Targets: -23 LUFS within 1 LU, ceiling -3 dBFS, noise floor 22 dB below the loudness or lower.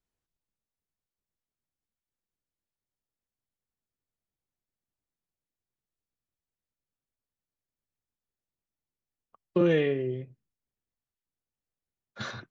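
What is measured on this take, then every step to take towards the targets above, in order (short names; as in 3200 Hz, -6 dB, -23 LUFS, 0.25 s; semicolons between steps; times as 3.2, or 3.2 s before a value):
loudness -28.0 LUFS; peak -13.0 dBFS; loudness target -23.0 LUFS
-> gain +5 dB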